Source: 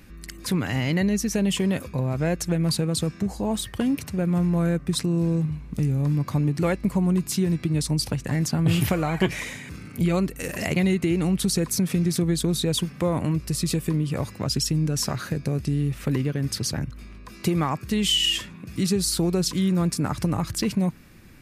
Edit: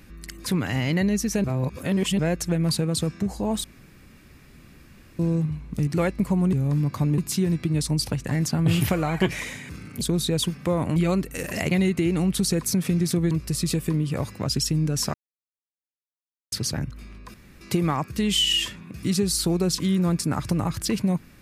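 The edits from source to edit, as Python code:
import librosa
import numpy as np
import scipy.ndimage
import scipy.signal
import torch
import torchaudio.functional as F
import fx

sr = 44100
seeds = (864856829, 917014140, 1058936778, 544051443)

y = fx.edit(x, sr, fx.reverse_span(start_s=1.44, length_s=0.75),
    fx.room_tone_fill(start_s=3.64, length_s=1.55),
    fx.move(start_s=5.87, length_s=0.65, to_s=7.18),
    fx.move(start_s=12.36, length_s=0.95, to_s=10.01),
    fx.silence(start_s=15.14, length_s=1.38),
    fx.insert_room_tone(at_s=17.34, length_s=0.27), tone=tone)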